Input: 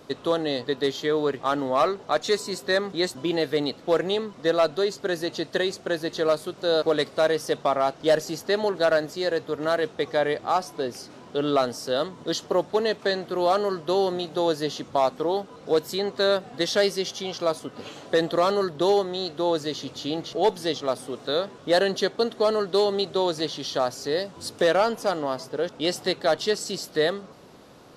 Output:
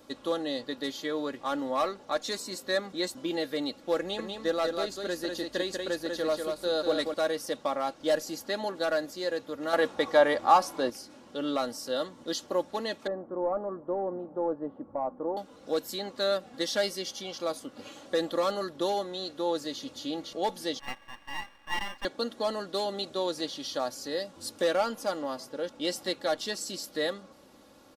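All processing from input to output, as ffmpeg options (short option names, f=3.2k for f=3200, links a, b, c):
-filter_complex "[0:a]asettb=1/sr,asplit=3[a][b][c];[a]atrim=end=3.994[d];[b]atrim=start=3.99:end=7.14,asetpts=PTS-STARTPTS,afade=t=in:d=0.004:c=qsin,afade=t=out:st=3.146:d=0.004:c=qsin,aeval=exprs='val(0)+0.002*(sin(2*PI*50*n/s)+sin(2*PI*2*50*n/s)/2+sin(2*PI*3*50*n/s)/3+sin(2*PI*4*50*n/s)/4+sin(2*PI*5*50*n/s)/5)':c=same,aecho=1:1:193:0.596,atrim=end_sample=138915[e];[c]atrim=start=7.136[f];[d][e]acrossfade=d=0.004:c1=hsin:c2=qsin[g];[g][f]acrossfade=d=0.004:c1=qsin:c2=hsin,asettb=1/sr,asplit=3[h][i][j];[h]atrim=end=9.734[k];[i]atrim=start=9.73:end=10.9,asetpts=PTS-STARTPTS,afade=t=in:d=0.004:c=qsin,afade=t=out:st=1.166:d=0.004:c=qsin,equalizer=f=990:t=o:w=1.4:g=7,acontrast=30[l];[j]atrim=start=10.896[m];[k][l]acrossfade=d=0.004:c1=hsin:c2=qsin[n];[n][m]acrossfade=d=0.004:c1=qsin:c2=hsin,asettb=1/sr,asplit=3[o][p][q];[o]atrim=end=13.074[r];[p]atrim=start=13.07:end=15.37,asetpts=PTS-STARTPTS,afade=t=in:d=0.004:c=qsin,afade=t=out:st=2.296:d=0.004:c=qsin,asoftclip=type=hard:threshold=-17dB,lowpass=f=1.1k:w=0.5412,lowpass=f=1.1k:w=1.3066[s];[q]atrim=start=15.366[t];[r][s]acrossfade=d=0.004:c1=hsin:c2=qsin[u];[u][t]acrossfade=d=0.004:c1=qsin:c2=hsin,asettb=1/sr,asplit=3[v][w][x];[v]atrim=end=20.794[y];[w]atrim=start=20.79:end=22.05,asetpts=PTS-STARTPTS,afade=t=in:d=0.004:c=qsin,afade=t=out:st=1.256:d=0.004:c=qsin,lowpass=f=2k:w=0.5412,lowpass=f=2k:w=1.3066,aeval=exprs='val(0)*sin(2*PI*1400*n/s)':c=same,aeval=exprs='max(val(0),0)':c=same[z];[x]atrim=start=22.046[aa];[y][z]acrossfade=d=0.004:c1=hsin:c2=qsin[ab];[ab][aa]acrossfade=d=0.004:c1=qsin:c2=hsin,highshelf=f=7.9k:g=8,aecho=1:1:3.6:0.58,volume=-8dB"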